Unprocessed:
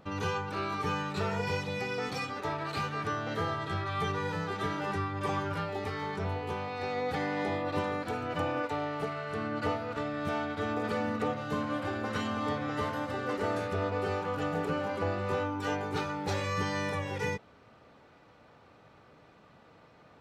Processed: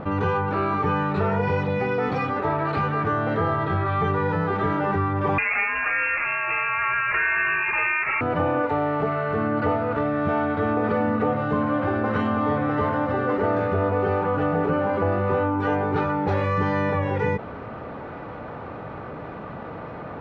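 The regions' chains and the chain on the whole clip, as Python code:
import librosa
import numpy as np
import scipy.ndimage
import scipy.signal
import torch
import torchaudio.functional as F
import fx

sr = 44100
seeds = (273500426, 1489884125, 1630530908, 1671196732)

y = fx.chain(x, sr, fx.steep_highpass(hz=870.0, slope=96),
    fx.freq_invert(carrier_hz=3600),
    fx.peak_eq(hz=1700.0, db=12.0, octaves=2.8), at=(5.38, 8.21))
y = scipy.signal.sosfilt(scipy.signal.butter(2, 1600.0, 'lowpass', fs=sr, output='sos'), y)
y = fx.env_flatten(y, sr, amount_pct=50)
y = F.gain(torch.from_numpy(y), 8.0).numpy()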